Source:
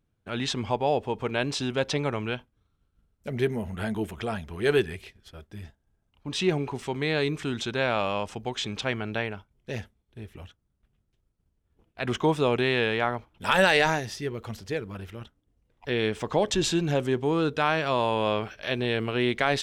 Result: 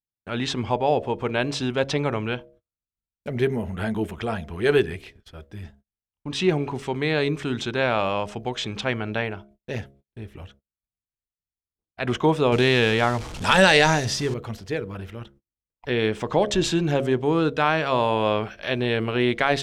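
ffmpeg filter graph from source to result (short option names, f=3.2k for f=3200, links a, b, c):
-filter_complex "[0:a]asettb=1/sr,asplit=3[a][b][c];[a]atrim=end=12.524[d];[b]atrim=start=12.52:end=14.34,asetpts=PTS-STARTPTS,afade=t=in:d=0.004:c=qsin,afade=t=out:st=1.816:d=0.004:c=qsin,aeval=exprs='val(0)+0.5*0.0158*sgn(val(0))':c=same,lowpass=7.2k,bass=f=250:g=4,treble=f=4k:g=12[e];[c]atrim=start=14.336[f];[d][e]acrossfade=d=0.004:c1=hsin:c2=qsin[g];[g][f]acrossfade=d=0.004:c1=qsin:c2=hsin,bandreject=f=68.91:t=h:w=4,bandreject=f=137.82:t=h:w=4,bandreject=f=206.73:t=h:w=4,bandreject=f=275.64:t=h:w=4,bandreject=f=344.55:t=h:w=4,bandreject=f=413.46:t=h:w=4,bandreject=f=482.37:t=h:w=4,bandreject=f=551.28:t=h:w=4,bandreject=f=620.19:t=h:w=4,bandreject=f=689.1:t=h:w=4,agate=range=-32dB:threshold=-55dB:ratio=16:detection=peak,highshelf=f=4.1k:g=-5.5,volume=4dB"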